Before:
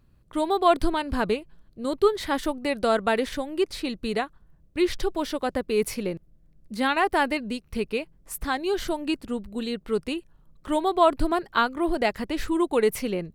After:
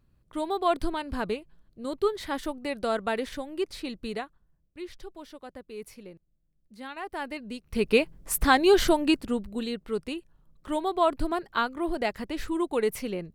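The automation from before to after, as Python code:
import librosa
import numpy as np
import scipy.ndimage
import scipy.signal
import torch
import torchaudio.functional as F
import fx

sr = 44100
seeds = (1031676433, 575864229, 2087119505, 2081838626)

y = fx.gain(x, sr, db=fx.line((4.06, -5.5), (4.81, -16.5), (6.9, -16.5), (7.61, -5.5), (7.94, 7.0), (8.82, 7.0), (9.9, -4.5)))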